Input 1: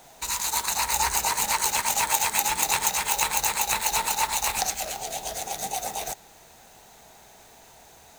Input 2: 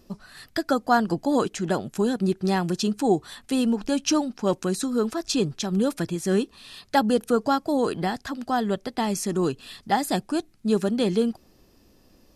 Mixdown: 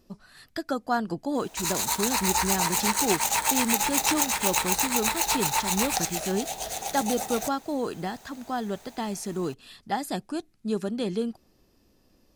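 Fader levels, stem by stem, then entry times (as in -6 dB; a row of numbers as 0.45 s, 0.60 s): -1.0 dB, -6.0 dB; 1.35 s, 0.00 s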